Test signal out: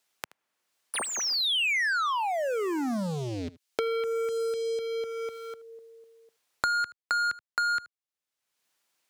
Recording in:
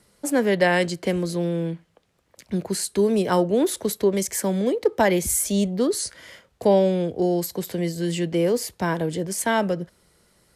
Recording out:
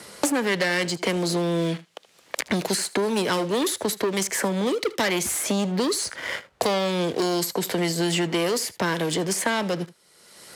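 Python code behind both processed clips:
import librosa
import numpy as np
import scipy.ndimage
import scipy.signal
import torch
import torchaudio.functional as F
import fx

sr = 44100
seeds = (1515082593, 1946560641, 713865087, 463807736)

p1 = fx.dynamic_eq(x, sr, hz=720.0, q=1.0, threshold_db=-35.0, ratio=4.0, max_db=-7)
p2 = fx.leveller(p1, sr, passes=3)
p3 = fx.highpass(p2, sr, hz=440.0, slope=6)
p4 = fx.high_shelf(p3, sr, hz=11000.0, db=-8.0)
p5 = p4 + fx.echo_single(p4, sr, ms=77, db=-21.5, dry=0)
p6 = fx.band_squash(p5, sr, depth_pct=100)
y = p6 * librosa.db_to_amplitude(-4.0)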